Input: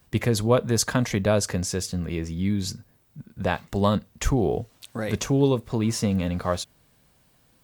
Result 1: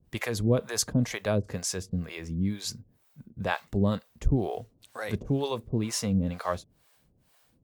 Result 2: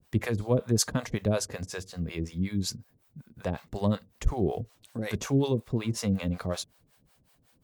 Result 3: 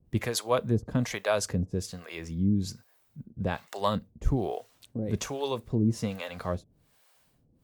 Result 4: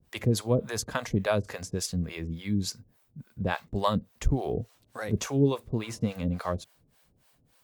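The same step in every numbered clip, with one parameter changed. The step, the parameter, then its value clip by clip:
harmonic tremolo, rate: 2.1 Hz, 5.4 Hz, 1.2 Hz, 3.5 Hz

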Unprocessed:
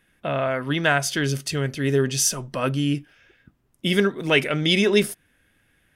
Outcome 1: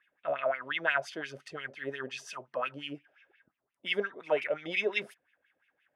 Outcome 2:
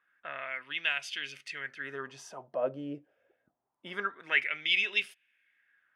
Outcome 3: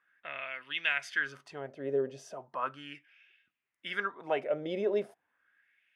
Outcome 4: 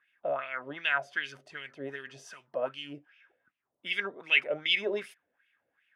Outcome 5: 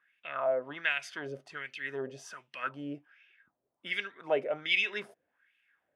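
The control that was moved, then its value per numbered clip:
wah-wah, rate: 5.7 Hz, 0.25 Hz, 0.37 Hz, 2.6 Hz, 1.3 Hz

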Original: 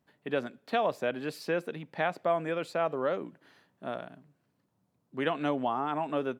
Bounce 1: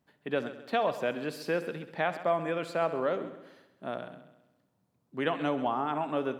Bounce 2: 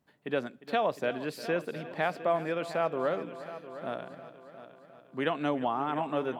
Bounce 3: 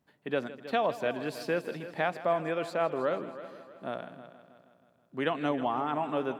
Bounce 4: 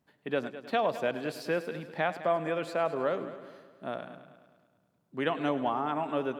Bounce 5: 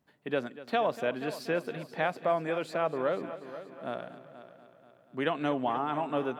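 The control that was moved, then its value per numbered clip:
multi-head delay, time: 66 ms, 354 ms, 159 ms, 104 ms, 241 ms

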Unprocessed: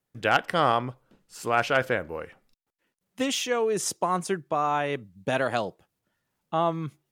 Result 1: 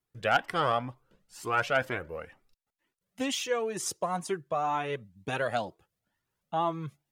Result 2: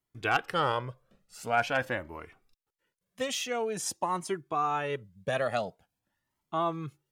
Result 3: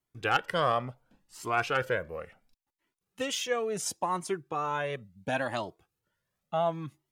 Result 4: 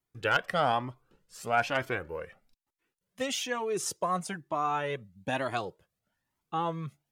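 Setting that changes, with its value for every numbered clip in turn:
Shepard-style flanger, rate: 2.1 Hz, 0.47 Hz, 0.71 Hz, 1.1 Hz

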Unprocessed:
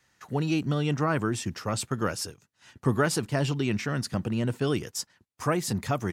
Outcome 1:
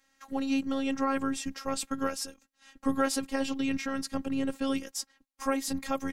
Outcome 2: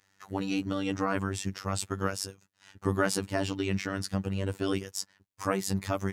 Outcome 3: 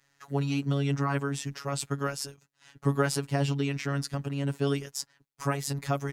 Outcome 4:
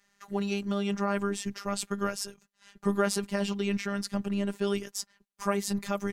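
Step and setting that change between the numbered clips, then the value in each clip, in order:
robot voice, frequency: 270 Hz, 97 Hz, 140 Hz, 200 Hz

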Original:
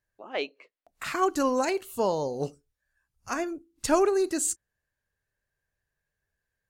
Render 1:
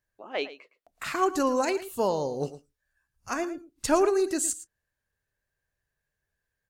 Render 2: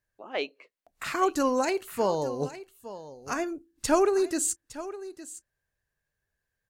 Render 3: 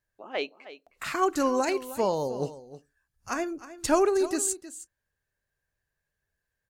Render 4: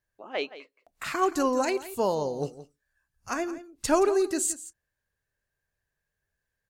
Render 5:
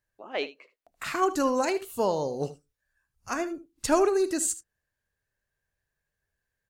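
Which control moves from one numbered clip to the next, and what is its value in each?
delay, time: 112 ms, 861 ms, 313 ms, 172 ms, 76 ms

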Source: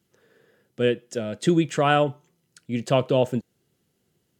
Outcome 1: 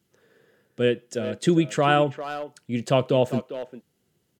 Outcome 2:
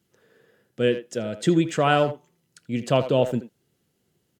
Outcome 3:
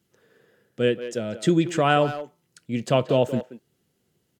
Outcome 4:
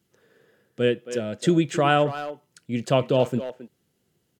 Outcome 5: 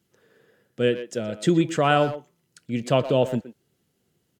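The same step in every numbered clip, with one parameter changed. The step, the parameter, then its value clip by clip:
speakerphone echo, time: 400 ms, 80 ms, 180 ms, 270 ms, 120 ms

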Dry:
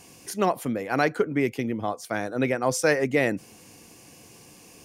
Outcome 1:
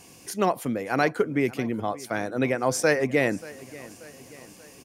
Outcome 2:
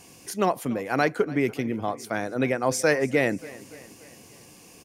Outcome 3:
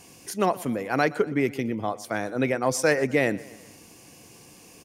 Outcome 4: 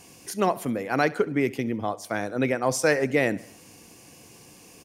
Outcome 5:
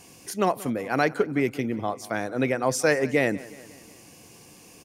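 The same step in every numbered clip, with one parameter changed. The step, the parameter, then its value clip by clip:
feedback delay, time: 584 ms, 289 ms, 122 ms, 68 ms, 182 ms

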